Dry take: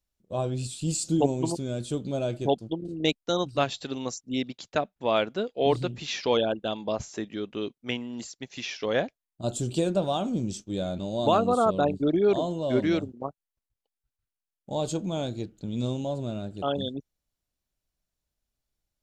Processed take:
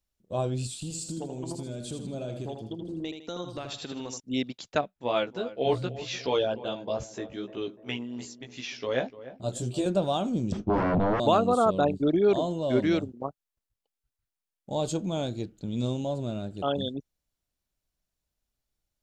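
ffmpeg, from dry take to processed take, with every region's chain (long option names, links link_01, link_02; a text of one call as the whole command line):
ffmpeg -i in.wav -filter_complex "[0:a]asettb=1/sr,asplit=3[link_01][link_02][link_03];[link_01]atrim=end=0.744[link_04];[link_02]atrim=start=0.74:end=4.2,asetpts=PTS-STARTPTS,afade=type=in:duration=0.004:curve=qsin,afade=type=out:start_time=3.456:duration=0.004:curve=qsin,acompressor=threshold=-32dB:ratio=10:attack=3.2:release=140:knee=1:detection=peak,aecho=1:1:79|158|237|316:0.473|0.18|0.0683|0.026,atrim=end_sample=152586[link_05];[link_03]atrim=start=4.196[link_06];[link_04][link_05]acrossfade=duration=0.004:curve1=hsin:curve2=qsin[link_07];[link_07][link_06]acrossfade=duration=0.004:curve1=qsin:curve2=hsin,asettb=1/sr,asplit=3[link_08][link_09][link_10];[link_08]atrim=end=4.814[link_11];[link_09]atrim=start=4.81:end=9.86,asetpts=PTS-STARTPTS,afade=type=in:duration=0.004:curve=qsin,afade=type=out:start_time=5.046:duration=0.004:curve=qsin,flanger=delay=15:depth=2:speed=2.6,asplit=2[link_12][link_13];[link_13]adelay=297,lowpass=frequency=1300:poles=1,volume=-14.5dB,asplit=2[link_14][link_15];[link_15]adelay=297,lowpass=frequency=1300:poles=1,volume=0.52,asplit=2[link_16][link_17];[link_17]adelay=297,lowpass=frequency=1300:poles=1,volume=0.52,asplit=2[link_18][link_19];[link_19]adelay=297,lowpass=frequency=1300:poles=1,volume=0.52,asplit=2[link_20][link_21];[link_21]adelay=297,lowpass=frequency=1300:poles=1,volume=0.52[link_22];[link_12][link_14][link_16][link_18][link_20][link_22]amix=inputs=6:normalize=0,atrim=end_sample=222705[link_23];[link_10]atrim=start=9.856[link_24];[link_11][link_23]acrossfade=duration=0.004:curve1=hsin:curve2=qsin[link_25];[link_25][link_24]acrossfade=duration=0.004:curve1=qsin:curve2=hsin,asettb=1/sr,asplit=3[link_26][link_27][link_28];[link_26]atrim=end=10.524[link_29];[link_27]atrim=start=10.52:end=11.2,asetpts=PTS-STARTPTS,afade=type=in:duration=0.004:curve=qsin,afade=type=out:start_time=0.676:duration=0.004:curve=qsin,aeval=exprs='0.106*sin(PI/2*5.01*val(0)/0.106)':channel_layout=same,lowpass=1000[link_30];[link_28]atrim=start=11.196[link_31];[link_29][link_30]acrossfade=duration=0.004:curve1=hsin:curve2=qsin[link_32];[link_32][link_31]acrossfade=duration=0.004:curve1=qsin:curve2=hsin" out.wav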